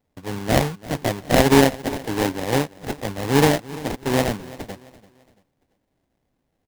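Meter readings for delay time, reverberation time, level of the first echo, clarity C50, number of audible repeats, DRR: 339 ms, no reverb audible, −19.0 dB, no reverb audible, 2, no reverb audible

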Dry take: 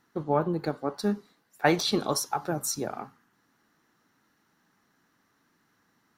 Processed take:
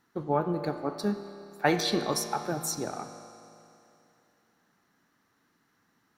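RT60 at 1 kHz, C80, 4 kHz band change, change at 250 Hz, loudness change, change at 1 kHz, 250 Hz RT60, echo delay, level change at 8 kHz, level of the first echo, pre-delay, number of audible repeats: 2.8 s, 9.0 dB, −1.5 dB, −1.5 dB, −1.5 dB, −1.0 dB, 2.8 s, no echo audible, −2.0 dB, no echo audible, 9 ms, no echo audible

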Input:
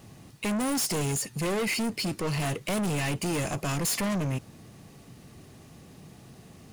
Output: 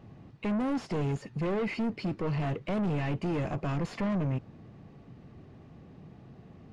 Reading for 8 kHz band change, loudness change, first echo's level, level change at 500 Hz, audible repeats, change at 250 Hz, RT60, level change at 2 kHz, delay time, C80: below −25 dB, −3.0 dB, no echo audible, −1.5 dB, no echo audible, −1.0 dB, no reverb audible, −7.5 dB, no echo audible, no reverb audible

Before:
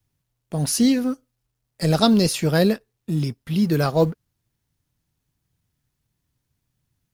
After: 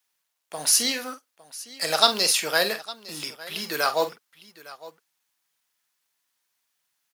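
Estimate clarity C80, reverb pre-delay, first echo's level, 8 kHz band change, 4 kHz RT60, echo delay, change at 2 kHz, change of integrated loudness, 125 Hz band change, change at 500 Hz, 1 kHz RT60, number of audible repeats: no reverb audible, no reverb audible, −10.5 dB, +5.5 dB, no reverb audible, 46 ms, +5.0 dB, −2.0 dB, −25.5 dB, −5.5 dB, no reverb audible, 2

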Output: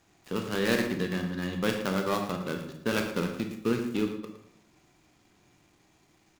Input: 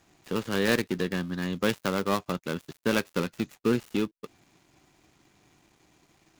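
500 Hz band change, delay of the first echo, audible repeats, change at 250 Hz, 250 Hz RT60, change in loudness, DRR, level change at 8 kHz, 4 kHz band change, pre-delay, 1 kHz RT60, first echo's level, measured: −1.5 dB, 112 ms, 1, −1.0 dB, 0.95 s, −1.5 dB, 3.5 dB, −2.0 dB, −1.5 dB, 24 ms, 0.65 s, −11.5 dB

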